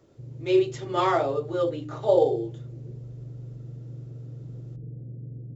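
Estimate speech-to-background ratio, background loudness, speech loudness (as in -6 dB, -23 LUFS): 15.5 dB, -40.5 LUFS, -25.0 LUFS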